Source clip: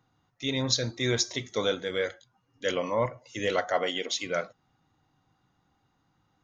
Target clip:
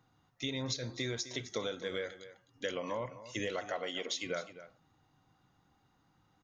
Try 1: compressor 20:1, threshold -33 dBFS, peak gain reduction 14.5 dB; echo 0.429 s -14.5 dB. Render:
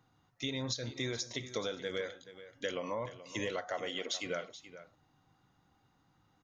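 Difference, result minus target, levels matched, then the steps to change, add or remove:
echo 0.171 s late
change: echo 0.258 s -14.5 dB

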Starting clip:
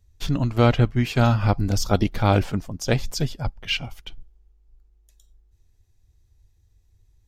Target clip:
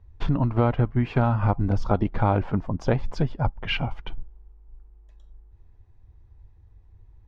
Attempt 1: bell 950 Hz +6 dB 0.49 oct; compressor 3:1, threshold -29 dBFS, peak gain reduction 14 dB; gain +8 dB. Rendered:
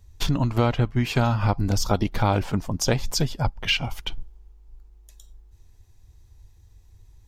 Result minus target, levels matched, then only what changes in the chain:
2000 Hz band +3.5 dB
add first: LPF 1600 Hz 12 dB/oct

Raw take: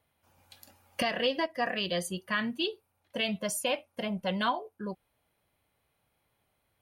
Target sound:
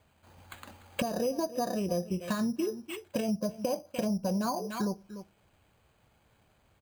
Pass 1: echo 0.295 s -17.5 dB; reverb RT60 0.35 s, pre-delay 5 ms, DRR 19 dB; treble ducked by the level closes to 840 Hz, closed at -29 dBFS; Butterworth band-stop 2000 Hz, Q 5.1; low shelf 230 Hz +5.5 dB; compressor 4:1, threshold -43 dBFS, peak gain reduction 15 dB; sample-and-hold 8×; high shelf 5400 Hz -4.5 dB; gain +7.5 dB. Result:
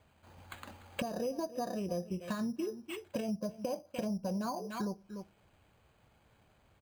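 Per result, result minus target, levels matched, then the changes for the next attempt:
compressor: peak gain reduction +5 dB; 8000 Hz band -2.5 dB
change: compressor 4:1, threshold -36 dBFS, peak gain reduction 10 dB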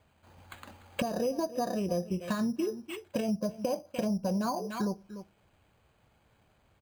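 8000 Hz band -2.5 dB
remove: high shelf 5400 Hz -4.5 dB

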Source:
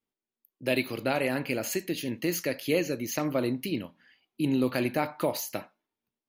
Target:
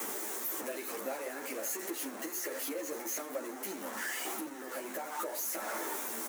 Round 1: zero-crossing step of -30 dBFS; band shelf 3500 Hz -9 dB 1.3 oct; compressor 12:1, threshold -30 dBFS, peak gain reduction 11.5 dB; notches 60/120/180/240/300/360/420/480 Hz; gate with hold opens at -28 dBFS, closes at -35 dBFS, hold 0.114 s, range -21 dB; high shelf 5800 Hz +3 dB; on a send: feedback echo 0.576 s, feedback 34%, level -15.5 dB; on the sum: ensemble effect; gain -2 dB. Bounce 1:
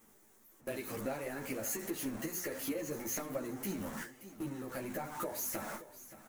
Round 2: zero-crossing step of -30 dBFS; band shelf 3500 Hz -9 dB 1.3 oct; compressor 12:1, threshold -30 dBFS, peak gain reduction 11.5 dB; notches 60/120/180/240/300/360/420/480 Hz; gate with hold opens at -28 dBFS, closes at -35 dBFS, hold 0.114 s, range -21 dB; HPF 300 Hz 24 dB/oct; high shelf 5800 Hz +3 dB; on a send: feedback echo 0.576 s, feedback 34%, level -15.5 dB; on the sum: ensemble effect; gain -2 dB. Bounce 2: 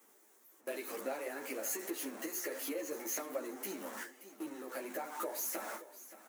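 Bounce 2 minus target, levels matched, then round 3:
zero-crossing step: distortion -6 dB
zero-crossing step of -21 dBFS; band shelf 3500 Hz -9 dB 1.3 oct; compressor 12:1, threshold -30 dBFS, peak gain reduction 13 dB; notches 60/120/180/240/300/360/420/480 Hz; gate with hold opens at -28 dBFS, closes at -35 dBFS, hold 0.114 s, range -21 dB; HPF 300 Hz 24 dB/oct; high shelf 5800 Hz +3 dB; on a send: feedback echo 0.576 s, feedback 34%, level -15.5 dB; on the sum: ensemble effect; gain -2 dB

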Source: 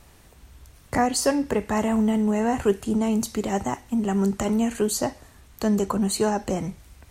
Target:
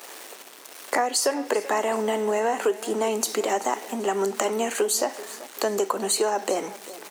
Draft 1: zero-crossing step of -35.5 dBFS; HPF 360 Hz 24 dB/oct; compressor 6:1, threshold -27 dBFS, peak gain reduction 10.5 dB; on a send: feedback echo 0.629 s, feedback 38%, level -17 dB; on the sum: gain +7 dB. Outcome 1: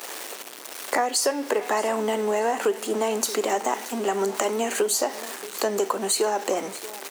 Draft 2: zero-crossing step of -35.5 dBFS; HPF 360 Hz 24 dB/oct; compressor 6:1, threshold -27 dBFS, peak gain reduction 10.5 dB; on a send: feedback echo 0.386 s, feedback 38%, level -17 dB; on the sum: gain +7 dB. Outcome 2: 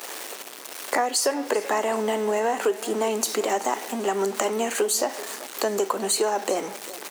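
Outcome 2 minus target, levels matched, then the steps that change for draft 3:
zero-crossing step: distortion +7 dB
change: zero-crossing step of -43 dBFS

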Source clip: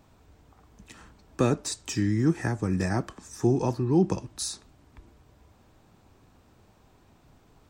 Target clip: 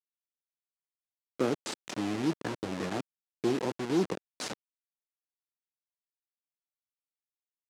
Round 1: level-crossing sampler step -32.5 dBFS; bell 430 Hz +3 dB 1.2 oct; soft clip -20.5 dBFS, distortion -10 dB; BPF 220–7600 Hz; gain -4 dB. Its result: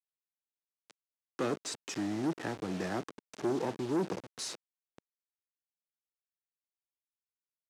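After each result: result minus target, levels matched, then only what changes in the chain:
soft clip: distortion +12 dB; level-crossing sampler: distortion -8 dB
change: soft clip -11 dBFS, distortion -22 dB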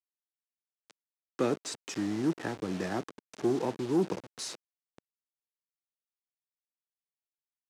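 level-crossing sampler: distortion -8 dB
change: level-crossing sampler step -24.5 dBFS

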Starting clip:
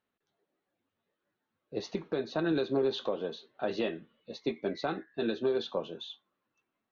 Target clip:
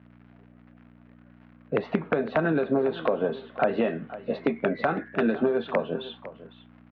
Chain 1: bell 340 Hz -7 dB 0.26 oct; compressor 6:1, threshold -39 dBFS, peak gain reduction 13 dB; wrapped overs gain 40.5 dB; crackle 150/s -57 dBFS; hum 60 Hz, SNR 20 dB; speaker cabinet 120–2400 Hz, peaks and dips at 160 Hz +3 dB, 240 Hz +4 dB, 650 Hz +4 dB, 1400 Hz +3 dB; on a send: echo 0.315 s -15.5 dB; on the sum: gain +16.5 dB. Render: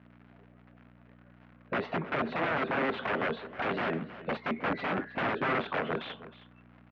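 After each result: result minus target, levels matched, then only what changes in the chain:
wrapped overs: distortion +24 dB; echo 0.189 s early
change: wrapped overs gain 29.5 dB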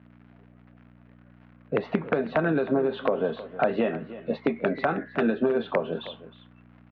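echo 0.189 s early
change: echo 0.504 s -15.5 dB

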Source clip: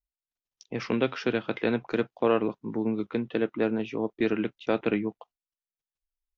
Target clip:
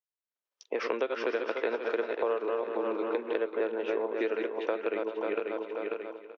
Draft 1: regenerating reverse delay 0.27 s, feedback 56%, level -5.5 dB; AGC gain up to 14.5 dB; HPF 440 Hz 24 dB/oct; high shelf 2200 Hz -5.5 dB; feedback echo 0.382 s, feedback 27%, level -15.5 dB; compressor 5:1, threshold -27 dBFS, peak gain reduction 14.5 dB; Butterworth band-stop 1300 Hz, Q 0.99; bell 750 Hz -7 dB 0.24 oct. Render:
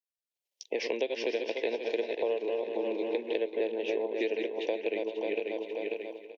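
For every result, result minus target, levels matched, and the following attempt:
1000 Hz band -6.0 dB; 4000 Hz band +6.0 dB
regenerating reverse delay 0.27 s, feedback 56%, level -5.5 dB; AGC gain up to 14.5 dB; HPF 440 Hz 24 dB/oct; high shelf 2200 Hz -5.5 dB; feedback echo 0.382 s, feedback 27%, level -15.5 dB; compressor 5:1, threshold -27 dBFS, peak gain reduction 14.5 dB; bell 750 Hz -7 dB 0.24 oct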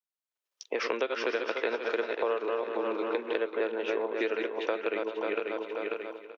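4000 Hz band +5.5 dB
regenerating reverse delay 0.27 s, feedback 56%, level -5.5 dB; AGC gain up to 14.5 dB; HPF 440 Hz 24 dB/oct; high shelf 2200 Hz -15 dB; feedback echo 0.382 s, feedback 27%, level -15.5 dB; compressor 5:1, threshold -27 dBFS, peak gain reduction 14 dB; bell 750 Hz -7 dB 0.24 oct

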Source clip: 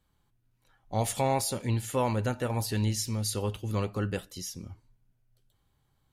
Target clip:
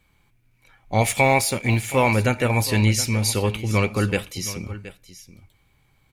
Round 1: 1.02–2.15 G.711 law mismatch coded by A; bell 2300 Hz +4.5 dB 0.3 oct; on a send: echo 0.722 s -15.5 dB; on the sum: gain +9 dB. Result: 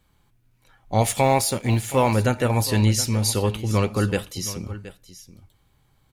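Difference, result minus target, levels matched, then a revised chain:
2000 Hz band -6.5 dB
1.02–2.15 G.711 law mismatch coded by A; bell 2300 Hz +16 dB 0.3 oct; on a send: echo 0.722 s -15.5 dB; on the sum: gain +9 dB

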